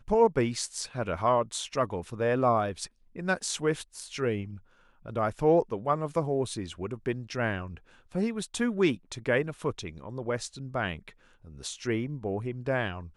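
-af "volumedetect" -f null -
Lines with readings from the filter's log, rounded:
mean_volume: -30.0 dB
max_volume: -11.3 dB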